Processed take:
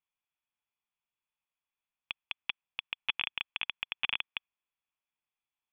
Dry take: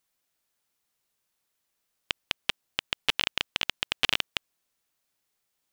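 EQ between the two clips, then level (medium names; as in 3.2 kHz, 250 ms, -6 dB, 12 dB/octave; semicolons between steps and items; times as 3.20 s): rippled Chebyshev low-pass 3.5 kHz, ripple 9 dB; dynamic bell 2.1 kHz, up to +4 dB, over -45 dBFS, Q 0.71; peaking EQ 510 Hz -10 dB 1.6 oct; -3.5 dB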